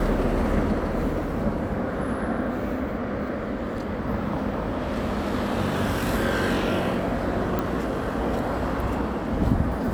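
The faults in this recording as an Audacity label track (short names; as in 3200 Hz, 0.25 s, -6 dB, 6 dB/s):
7.590000	7.590000	pop -13 dBFS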